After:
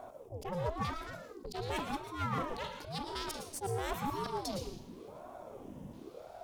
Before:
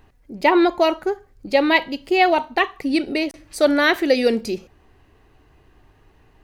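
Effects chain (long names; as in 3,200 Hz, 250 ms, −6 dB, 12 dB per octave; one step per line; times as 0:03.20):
volume swells 108 ms
flat-topped bell 1,600 Hz −14 dB
reversed playback
downward compressor 6 to 1, threshold −34 dBFS, peak gain reduction 19.5 dB
reversed playback
dynamic equaliser 400 Hz, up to −6 dB, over −48 dBFS, Q 0.89
asymmetric clip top −42.5 dBFS
auto-filter notch square 0.59 Hz 390–4,200 Hz
on a send at −6 dB: convolution reverb RT60 0.50 s, pre-delay 103 ms
on the sum: ring modulator whose carrier an LFO sweeps 430 Hz, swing 60%, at 0.94 Hz
level +8 dB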